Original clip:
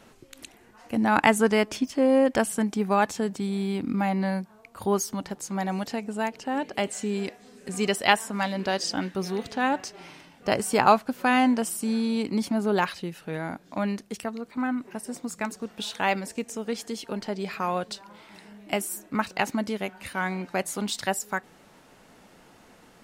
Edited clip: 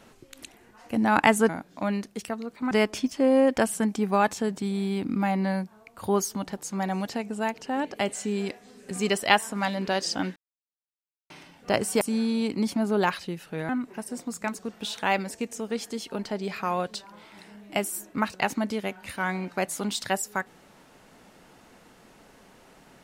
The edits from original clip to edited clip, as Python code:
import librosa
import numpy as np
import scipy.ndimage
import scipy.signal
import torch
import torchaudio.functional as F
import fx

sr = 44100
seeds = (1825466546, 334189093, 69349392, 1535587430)

y = fx.edit(x, sr, fx.silence(start_s=9.14, length_s=0.94),
    fx.cut(start_s=10.79, length_s=0.97),
    fx.move(start_s=13.44, length_s=1.22, to_s=1.49), tone=tone)